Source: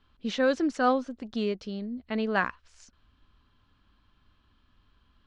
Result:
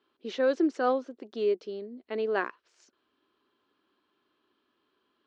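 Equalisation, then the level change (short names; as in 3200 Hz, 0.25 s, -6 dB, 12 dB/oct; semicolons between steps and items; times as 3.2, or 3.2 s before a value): resonant high-pass 370 Hz, resonance Q 4; LPF 6700 Hz 12 dB/oct; -5.5 dB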